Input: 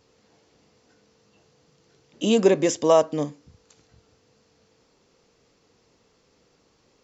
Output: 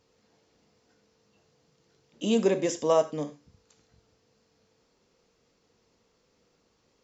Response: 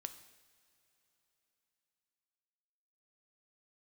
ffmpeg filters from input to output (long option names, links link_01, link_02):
-filter_complex "[1:a]atrim=start_sample=2205,atrim=end_sample=6174,asetrate=57330,aresample=44100[link_01];[0:a][link_01]afir=irnorm=-1:irlink=0"